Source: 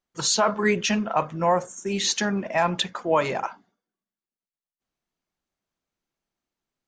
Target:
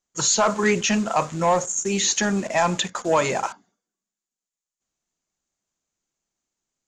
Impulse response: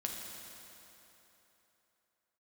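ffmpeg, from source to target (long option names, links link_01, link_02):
-filter_complex "[0:a]aeval=exprs='0.335*(cos(1*acos(clip(val(0)/0.335,-1,1)))-cos(1*PI/2))+0.0237*(cos(5*acos(clip(val(0)/0.335,-1,1)))-cos(5*PI/2))':channel_layout=same,asplit=2[link_01][link_02];[link_02]acrusher=bits=5:mix=0:aa=0.000001,volume=-5.5dB[link_03];[link_01][link_03]amix=inputs=2:normalize=0,acrossover=split=3300[link_04][link_05];[link_05]acompressor=threshold=-29dB:ratio=4:attack=1:release=60[link_06];[link_04][link_06]amix=inputs=2:normalize=0,lowpass=frequency=7000:width_type=q:width=6.3,volume=-3dB"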